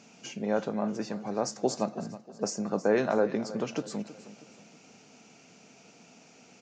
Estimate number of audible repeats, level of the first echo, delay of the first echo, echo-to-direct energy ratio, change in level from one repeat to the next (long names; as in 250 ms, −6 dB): 3, −16.0 dB, 319 ms, −15.0 dB, −7.0 dB